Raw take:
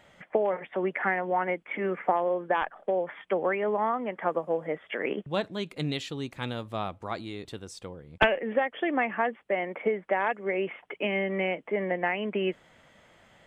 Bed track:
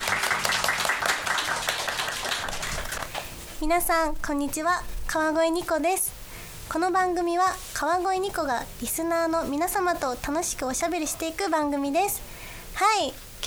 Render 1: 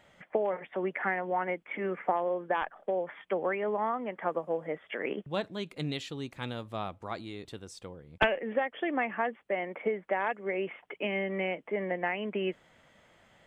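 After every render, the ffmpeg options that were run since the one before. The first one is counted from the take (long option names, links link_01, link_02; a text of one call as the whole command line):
ffmpeg -i in.wav -af "volume=-3.5dB" out.wav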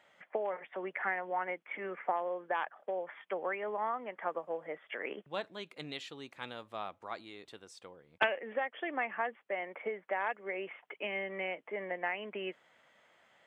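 ffmpeg -i in.wav -af "highpass=frequency=880:poles=1,highshelf=frequency=3600:gain=-8" out.wav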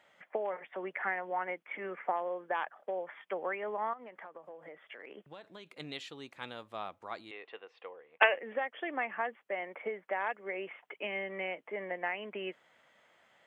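ffmpeg -i in.wav -filter_complex "[0:a]asettb=1/sr,asplit=3[link_01][link_02][link_03];[link_01]atrim=end=3.934[link_04];[link_02]atrim=start=3.93:end=5.8,asetpts=PTS-STARTPTS,afade=type=in:duration=0.004:curve=qsin,afade=type=out:start_time=1.866:duration=0.004:curve=qsin,acompressor=threshold=-44dB:ratio=10:attack=3.2:release=140:knee=1:detection=peak[link_05];[link_03]atrim=start=5.796[link_06];[link_04][link_05]acrossfade=duration=0.004:curve1=hsin:curve2=qsin[link_07];[link_07][link_06]acrossfade=duration=0.004:curve1=qsin:curve2=hsin,asettb=1/sr,asplit=3[link_08][link_09][link_10];[link_08]atrim=end=7.314[link_11];[link_09]atrim=start=7.31:end=8.34,asetpts=PTS-STARTPTS,afade=type=in:duration=0.004:curve=qsin,afade=type=out:start_time=1.026:duration=0.004:curve=qsin,highpass=420,equalizer=frequency=470:width_type=q:width=4:gain=9,equalizer=frequency=750:width_type=q:width=4:gain=6,equalizer=frequency=1100:width_type=q:width=4:gain=6,equalizer=frequency=1900:width_type=q:width=4:gain=8,equalizer=frequency=2700:width_type=q:width=4:gain=8,lowpass=frequency=3100:width=0.5412,lowpass=frequency=3100:width=1.3066[link_12];[link_10]atrim=start=8.336[link_13];[link_11][link_12]acrossfade=duration=0.004:curve1=hsin:curve2=qsin[link_14];[link_14][link_13]acrossfade=duration=0.004:curve1=qsin:curve2=hsin" out.wav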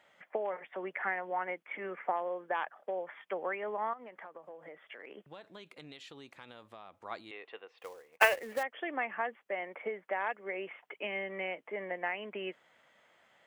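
ffmpeg -i in.wav -filter_complex "[0:a]asettb=1/sr,asplit=3[link_01][link_02][link_03];[link_01]atrim=end=5.724[link_04];[link_02]atrim=start=5.72:end=7.05,asetpts=PTS-STARTPTS,afade=type=in:duration=0.004:curve=qsin,afade=type=out:start_time=1.326:duration=0.004:curve=qsin,acompressor=threshold=-46dB:ratio=5:attack=3.2:release=140:knee=1:detection=peak[link_05];[link_03]atrim=start=7.046[link_06];[link_04][link_05]acrossfade=duration=0.004:curve1=hsin:curve2=qsin[link_07];[link_07][link_06]acrossfade=duration=0.004:curve1=qsin:curve2=hsin,asettb=1/sr,asplit=3[link_08][link_09][link_10];[link_08]atrim=end=7.784[link_11];[link_09]atrim=start=7.78:end=8.63,asetpts=PTS-STARTPTS,afade=type=in:duration=0.004:curve=qsin,afade=type=out:start_time=0.846:duration=0.004:curve=qsin,acrusher=bits=3:mode=log:mix=0:aa=0.000001[link_12];[link_10]atrim=start=8.626[link_13];[link_11][link_12]acrossfade=duration=0.004:curve1=hsin:curve2=qsin[link_14];[link_14][link_13]acrossfade=duration=0.004:curve1=qsin:curve2=hsin" out.wav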